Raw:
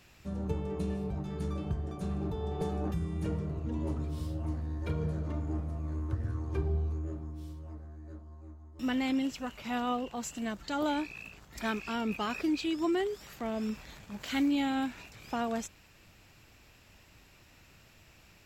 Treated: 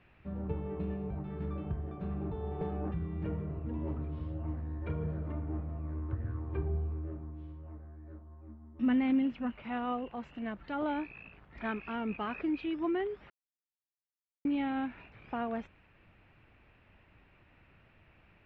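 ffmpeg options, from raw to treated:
ffmpeg -i in.wav -filter_complex "[0:a]asettb=1/sr,asplit=3[link_01][link_02][link_03];[link_01]atrim=end=8.474[link_04];[link_02]atrim=start=8.47:end=9.52,asetpts=PTS-STARTPTS,afade=type=in:duration=0.004:curve=qsin,afade=type=out:start_time=1.046:duration=0.004:curve=qsin,equalizer=frequency=230:width=4.9:gain=13.5[link_05];[link_03]atrim=start=9.516[link_06];[link_04][link_05]acrossfade=duration=0.004:curve1=hsin:curve2=qsin[link_07];[link_07][link_06]acrossfade=duration=0.004:curve1=qsin:curve2=hsin,asplit=3[link_08][link_09][link_10];[link_08]atrim=end=13.3,asetpts=PTS-STARTPTS,afade=type=out:start_time=13.296:duration=0.004:curve=hsin[link_11];[link_09]atrim=start=13.3:end=14.45,asetpts=PTS-STARTPTS,volume=0[link_12];[link_10]atrim=start=14.45,asetpts=PTS-STARTPTS,afade=type=in:duration=0.004:curve=hsin[link_13];[link_11][link_12][link_13]concat=n=3:v=0:a=1,lowpass=frequency=2600:width=0.5412,lowpass=frequency=2600:width=1.3066,volume=-2.5dB" out.wav

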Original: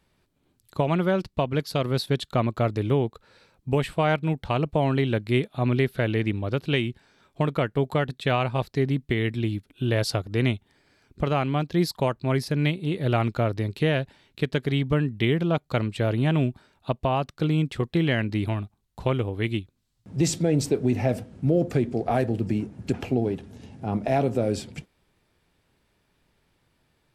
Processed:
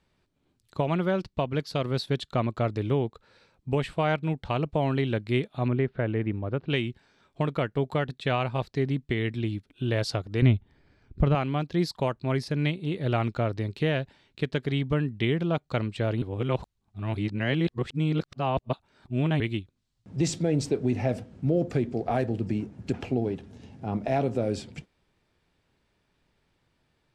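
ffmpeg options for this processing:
ffmpeg -i in.wav -filter_complex "[0:a]asettb=1/sr,asplit=3[link_01][link_02][link_03];[link_01]atrim=end=5.684[link_04];[link_02]atrim=start=5.68:end=6.7,asetpts=PTS-STARTPTS,afade=type=in:duration=0.004:curve=qsin,afade=type=out:start_time=1.016:duration=0.004:curve=qsin,lowpass=1700[link_05];[link_03]atrim=start=6.696[link_06];[link_04][link_05]acrossfade=duration=0.004:curve1=hsin:curve2=qsin[link_07];[link_07][link_06]acrossfade=duration=0.004:curve1=qsin:curve2=hsin,asettb=1/sr,asplit=3[link_08][link_09][link_10];[link_08]atrim=end=10.424[link_11];[link_09]atrim=start=10.42:end=11.35,asetpts=PTS-STARTPTS,afade=type=in:duration=0.004:curve=qsin,afade=type=out:start_time=0.926:duration=0.004:curve=qsin,aemphasis=mode=reproduction:type=bsi[link_12];[link_10]atrim=start=11.346[link_13];[link_11][link_12]acrossfade=duration=0.004:curve1=hsin:curve2=qsin[link_14];[link_14][link_13]acrossfade=duration=0.004:curve1=qsin:curve2=hsin,asplit=3[link_15][link_16][link_17];[link_15]atrim=end=16.222[link_18];[link_16]atrim=start=16.218:end=19.402,asetpts=PTS-STARTPTS,areverse[link_19];[link_17]atrim=start=19.398[link_20];[link_18][link_19]acrossfade=duration=0.004:curve1=hsin:curve2=hsin[link_21];[link_21][link_20]acrossfade=duration=0.004:curve1=hsin:curve2=hsin,lowpass=7700,volume=-3dB" out.wav

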